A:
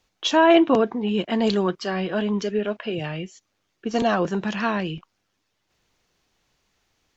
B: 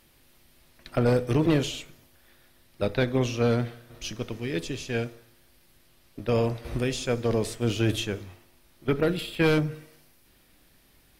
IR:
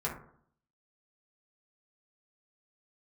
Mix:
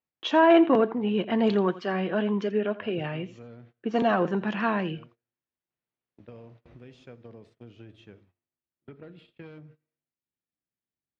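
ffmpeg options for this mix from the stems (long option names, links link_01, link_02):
-filter_complex "[0:a]equalizer=frequency=4900:width_type=o:width=0.82:gain=-3.5,asoftclip=type=tanh:threshold=-6dB,volume=-1.5dB,asplit=3[link_01][link_02][link_03];[link_02]volume=-17dB[link_04];[1:a]lowshelf=frequency=170:gain=9,acompressor=threshold=-27dB:ratio=6,volume=-15dB[link_05];[link_03]apad=whole_len=493542[link_06];[link_05][link_06]sidechaincompress=threshold=-27dB:ratio=8:attack=6.1:release=500[link_07];[link_04]aecho=0:1:84:1[link_08];[link_01][link_07][link_08]amix=inputs=3:normalize=0,agate=range=-22dB:threshold=-50dB:ratio=16:detection=peak,highpass=130,lowpass=2900"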